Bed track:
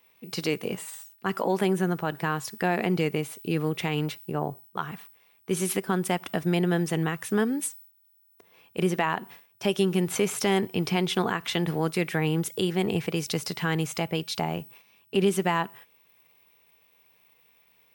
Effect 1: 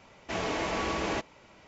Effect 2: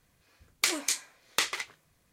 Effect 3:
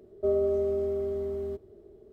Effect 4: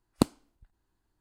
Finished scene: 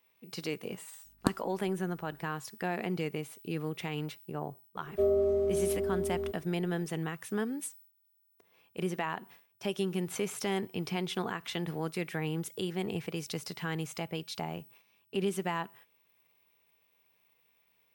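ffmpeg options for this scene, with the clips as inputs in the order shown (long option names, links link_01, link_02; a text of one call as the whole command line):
ffmpeg -i bed.wav -i cue0.wav -i cue1.wav -i cue2.wav -i cue3.wav -filter_complex "[0:a]volume=-8.5dB[link_01];[4:a]aeval=exprs='val(0)+0.001*(sin(2*PI*50*n/s)+sin(2*PI*2*50*n/s)/2+sin(2*PI*3*50*n/s)/3+sin(2*PI*4*50*n/s)/4+sin(2*PI*5*50*n/s)/5)':channel_layout=same,atrim=end=1.2,asetpts=PTS-STARTPTS,volume=-5.5dB,afade=type=in:duration=0.004:curve=hsin,afade=type=out:start_time=1.196:duration=0.004:curve=hsin,adelay=1050[link_02];[3:a]atrim=end=2.12,asetpts=PTS-STARTPTS,volume=-1dB,afade=type=in:duration=0.004:curve=hsin,afade=type=out:start_time=2.116:duration=0.004:curve=hsin,adelay=4750[link_03];[link_01][link_02][link_03]amix=inputs=3:normalize=0" out.wav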